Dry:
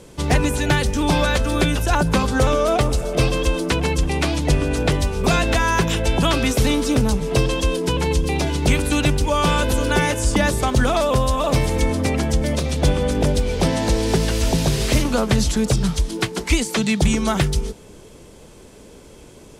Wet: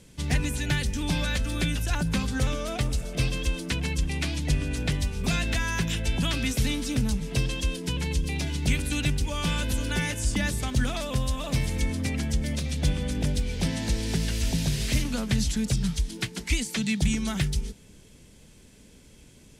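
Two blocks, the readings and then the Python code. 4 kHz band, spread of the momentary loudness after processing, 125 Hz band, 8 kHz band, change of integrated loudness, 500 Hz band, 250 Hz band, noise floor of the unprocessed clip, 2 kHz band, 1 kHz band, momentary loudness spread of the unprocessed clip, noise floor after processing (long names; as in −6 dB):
−6.5 dB, 3 LU, −6.5 dB, −6.5 dB, −8.0 dB, −16.0 dB, −8.5 dB, −44 dBFS, −8.0 dB, −15.5 dB, 3 LU, −53 dBFS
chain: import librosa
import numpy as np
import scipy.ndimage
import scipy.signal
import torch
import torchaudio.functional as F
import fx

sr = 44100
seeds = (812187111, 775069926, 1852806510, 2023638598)

y = fx.band_shelf(x, sr, hz=660.0, db=-9.5, octaves=2.3)
y = y * 10.0 ** (-6.5 / 20.0)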